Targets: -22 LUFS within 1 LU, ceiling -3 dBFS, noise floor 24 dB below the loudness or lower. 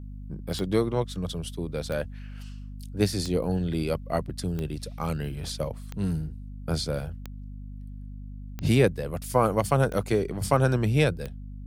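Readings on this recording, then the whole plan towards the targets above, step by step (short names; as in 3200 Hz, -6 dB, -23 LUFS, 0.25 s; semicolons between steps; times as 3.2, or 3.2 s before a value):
clicks 9; hum 50 Hz; harmonics up to 250 Hz; hum level -36 dBFS; loudness -27.5 LUFS; peak -7.5 dBFS; loudness target -22.0 LUFS
-> de-click; notches 50/100/150/200/250 Hz; gain +5.5 dB; limiter -3 dBFS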